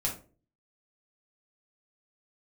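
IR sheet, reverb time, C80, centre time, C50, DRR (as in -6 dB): 0.40 s, 14.5 dB, 21 ms, 8.5 dB, -3.0 dB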